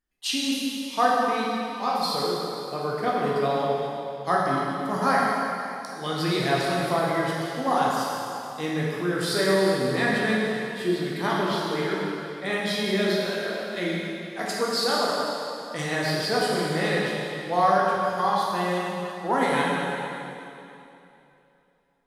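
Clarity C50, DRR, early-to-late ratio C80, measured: -2.5 dB, -5.5 dB, -0.5 dB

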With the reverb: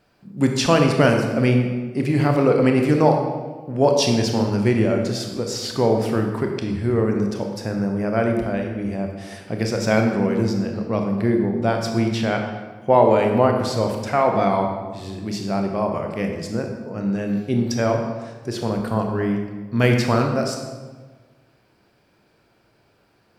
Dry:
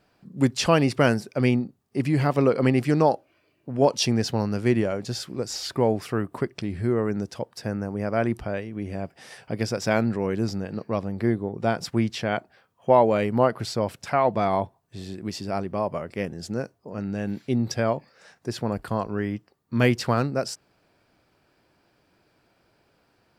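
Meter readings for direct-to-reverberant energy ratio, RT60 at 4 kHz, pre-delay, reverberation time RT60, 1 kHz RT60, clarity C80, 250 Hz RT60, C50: 2.5 dB, 0.95 s, 24 ms, 1.4 s, 1.3 s, 6.0 dB, 1.6 s, 4.5 dB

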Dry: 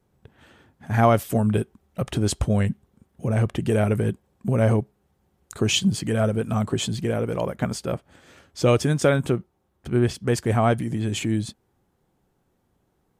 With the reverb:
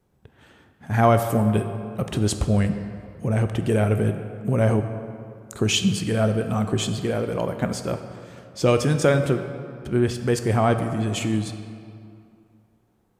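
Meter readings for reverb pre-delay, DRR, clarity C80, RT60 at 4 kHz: 14 ms, 7.5 dB, 9.5 dB, 1.5 s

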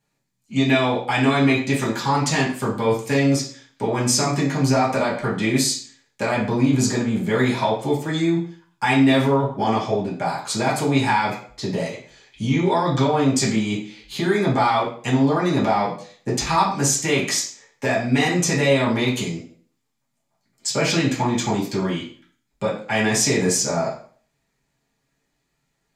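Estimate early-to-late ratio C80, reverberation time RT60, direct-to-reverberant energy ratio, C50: 10.5 dB, 0.45 s, -8.0 dB, 6.5 dB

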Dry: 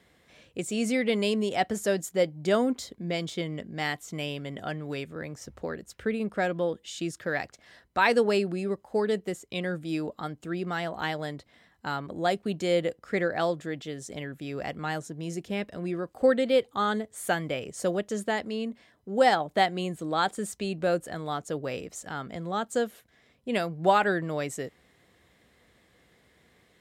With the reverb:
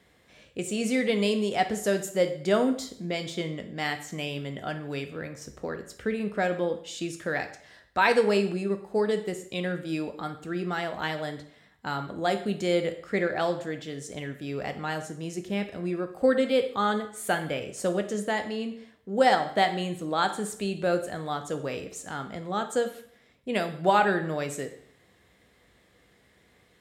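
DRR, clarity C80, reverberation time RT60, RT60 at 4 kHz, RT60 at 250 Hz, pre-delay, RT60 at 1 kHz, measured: 7.0 dB, 14.0 dB, 0.60 s, 0.55 s, 0.60 s, 6 ms, 0.60 s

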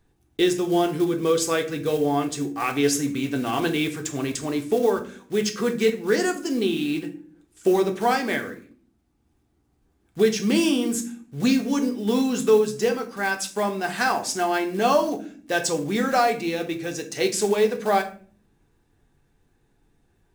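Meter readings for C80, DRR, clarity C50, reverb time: 17.5 dB, 4.0 dB, 12.5 dB, 0.50 s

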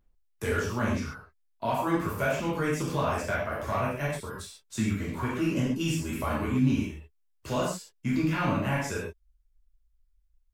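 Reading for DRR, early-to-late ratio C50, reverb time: -6.5 dB, 1.5 dB, not exponential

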